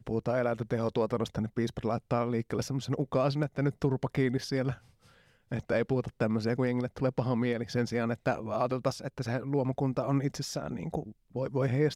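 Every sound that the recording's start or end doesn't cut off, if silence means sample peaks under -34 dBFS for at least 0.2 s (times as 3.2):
5.52–11.03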